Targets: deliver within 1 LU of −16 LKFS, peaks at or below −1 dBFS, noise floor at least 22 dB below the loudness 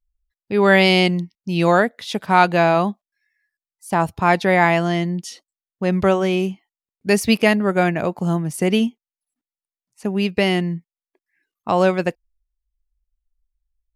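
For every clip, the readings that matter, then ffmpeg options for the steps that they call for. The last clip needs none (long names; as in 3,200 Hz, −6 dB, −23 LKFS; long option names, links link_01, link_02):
integrated loudness −18.5 LKFS; sample peak −1.0 dBFS; target loudness −16.0 LKFS
→ -af "volume=2.5dB,alimiter=limit=-1dB:level=0:latency=1"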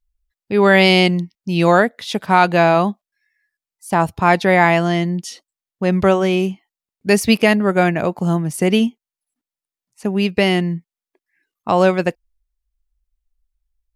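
integrated loudness −16.5 LKFS; sample peak −1.0 dBFS; background noise floor −91 dBFS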